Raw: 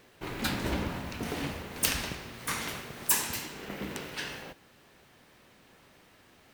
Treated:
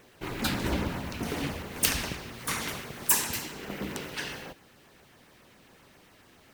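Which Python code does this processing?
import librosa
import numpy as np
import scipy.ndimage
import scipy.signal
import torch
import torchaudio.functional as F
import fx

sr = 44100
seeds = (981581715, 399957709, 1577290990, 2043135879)

y = fx.filter_lfo_notch(x, sr, shape='saw_down', hz=7.4, low_hz=460.0, high_hz=5000.0, q=2.6)
y = y * librosa.db_to_amplitude(2.5)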